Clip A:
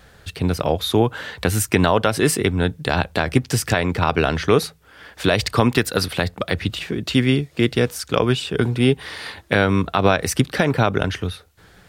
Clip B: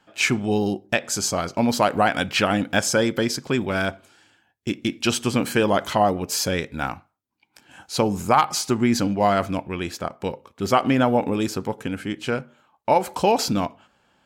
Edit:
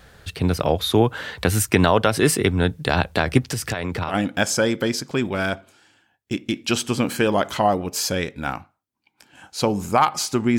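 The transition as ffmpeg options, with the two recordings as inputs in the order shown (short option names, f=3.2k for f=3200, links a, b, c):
-filter_complex "[0:a]asettb=1/sr,asplit=3[a][b][c];[a]atrim=end=3.484[d];[b]atrim=start=3.48:end=4.15,asetpts=PTS-STARTPTS,afade=t=in:d=0.004:c=qsin,afade=t=out:st=0.666:d=0.004:c=qsin,acompressor=threshold=-23dB:ratio=3:attack=3.2:release=140:knee=1:detection=peak[e];[c]atrim=start=4.146[f];[d][e]acrossfade=d=0.004:c1=hsin:c2=qsin[g];[g][f]acrossfade=d=0.004:c1=qsin:c2=hsin,apad=whole_dur=10.58,atrim=end=10.58,atrim=end=4.15,asetpts=PTS-STARTPTS[h];[1:a]atrim=start=2.43:end=8.94,asetpts=PTS-STARTPTS[i];[h][i]acrossfade=d=0.08:c1=tri:c2=tri"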